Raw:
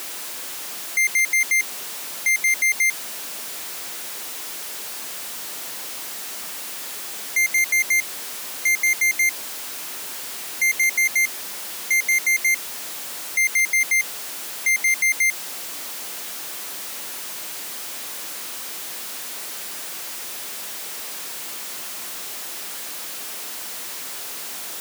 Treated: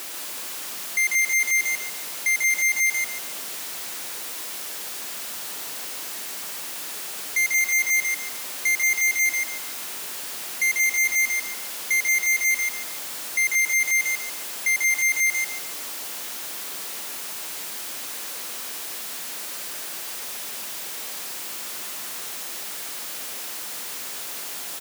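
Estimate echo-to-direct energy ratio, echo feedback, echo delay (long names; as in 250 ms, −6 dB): −3.5 dB, 29%, 143 ms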